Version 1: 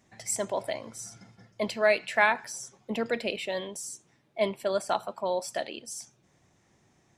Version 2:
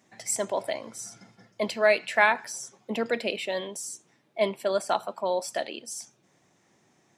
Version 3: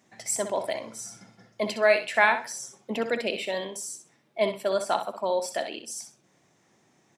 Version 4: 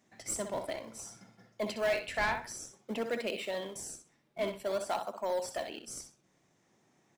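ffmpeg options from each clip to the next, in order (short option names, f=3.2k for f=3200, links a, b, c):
-af "highpass=170,volume=2dB"
-af "aecho=1:1:63|126|189:0.335|0.067|0.0134"
-filter_complex "[0:a]asplit=2[a][b];[b]acrusher=samples=30:mix=1:aa=0.000001:lfo=1:lforange=48:lforate=0.53,volume=-11.5dB[c];[a][c]amix=inputs=2:normalize=0,asoftclip=type=tanh:threshold=-17dB,volume=-7dB"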